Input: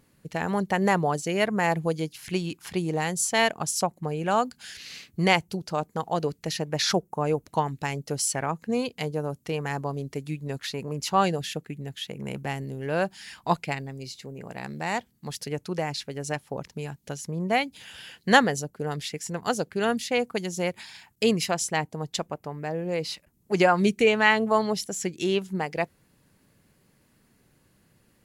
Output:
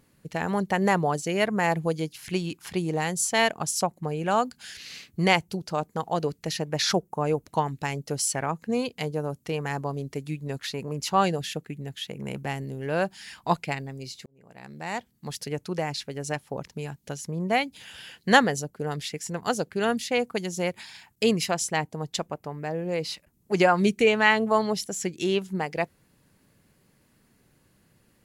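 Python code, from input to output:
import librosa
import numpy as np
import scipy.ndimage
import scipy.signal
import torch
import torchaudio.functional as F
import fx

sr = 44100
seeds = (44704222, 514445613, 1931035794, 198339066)

y = fx.edit(x, sr, fx.fade_in_span(start_s=14.26, length_s=1.0), tone=tone)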